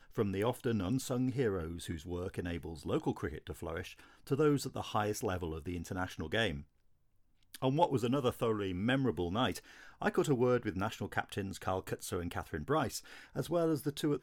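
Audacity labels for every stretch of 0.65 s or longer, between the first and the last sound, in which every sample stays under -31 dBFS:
6.500000	7.550000	silence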